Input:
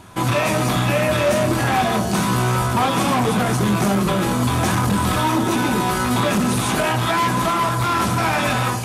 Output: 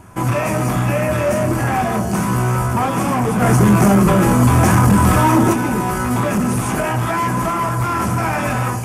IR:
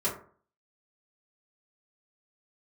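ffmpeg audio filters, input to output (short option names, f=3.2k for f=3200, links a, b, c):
-filter_complex "[0:a]equalizer=f=3.8k:t=o:w=0.6:g=-15,asplit=3[a][b][c];[a]afade=t=out:st=3.41:d=0.02[d];[b]acontrast=48,afade=t=in:st=3.41:d=0.02,afade=t=out:st=5.52:d=0.02[e];[c]afade=t=in:st=5.52:d=0.02[f];[d][e][f]amix=inputs=3:normalize=0,lowshelf=f=140:g=5"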